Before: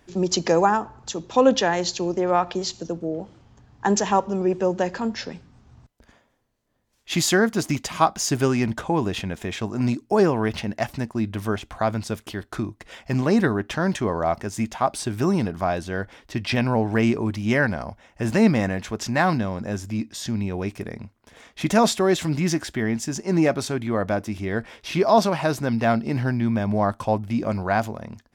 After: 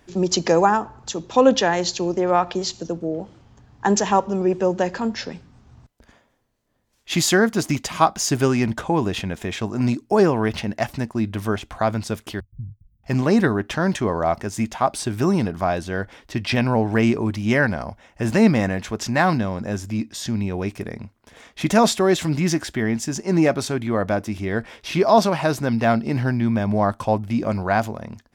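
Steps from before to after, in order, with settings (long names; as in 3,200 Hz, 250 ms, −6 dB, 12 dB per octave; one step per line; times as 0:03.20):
0:12.40–0:13.04: inverse Chebyshev band-stop filter 550–9,300 Hz, stop band 70 dB
level +2 dB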